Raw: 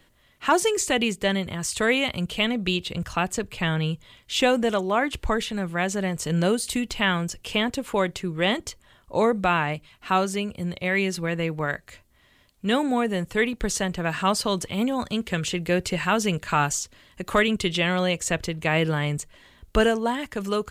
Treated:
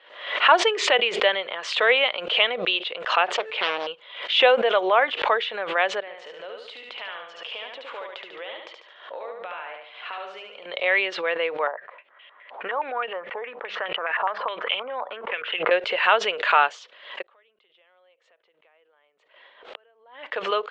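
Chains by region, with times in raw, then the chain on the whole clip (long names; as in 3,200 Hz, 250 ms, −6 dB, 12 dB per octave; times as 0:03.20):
0:03.26–0:03.87: low-shelf EQ 94 Hz +11 dB + hum removal 438.9 Hz, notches 40 + highs frequency-modulated by the lows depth 0.89 ms
0:06.00–0:10.66: downward compressor 12 to 1, threshold −35 dBFS + repeating echo 72 ms, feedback 43%, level −3.5 dB
0:11.67–0:15.71: mains-hum notches 50/100/150/200 Hz + downward compressor 10 to 1, threshold −29 dBFS + low-pass on a step sequencer 9.6 Hz 870–2,900 Hz
0:17.22–0:20.31: high-shelf EQ 2,300 Hz −6.5 dB + downward compressor, threshold −32 dBFS + gate with flip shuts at −35 dBFS, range −27 dB
whole clip: elliptic band-pass filter 500–3,400 Hz, stop band 60 dB; background raised ahead of every attack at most 89 dB per second; level +5 dB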